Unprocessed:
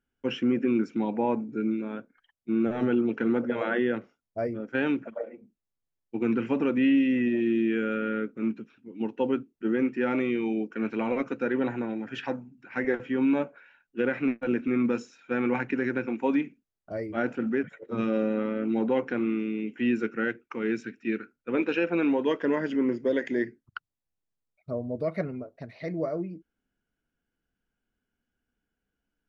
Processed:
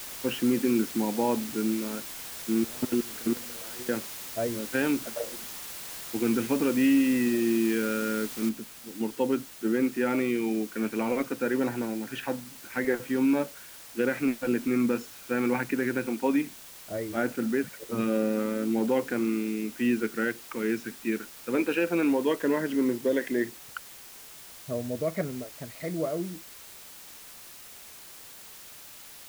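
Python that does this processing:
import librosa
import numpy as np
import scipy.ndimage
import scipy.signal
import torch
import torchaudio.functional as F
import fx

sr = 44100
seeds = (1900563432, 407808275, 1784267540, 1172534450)

y = fx.level_steps(x, sr, step_db=24, at=(2.6, 3.89))
y = fx.noise_floor_step(y, sr, seeds[0], at_s=8.49, before_db=-40, after_db=-47, tilt_db=0.0)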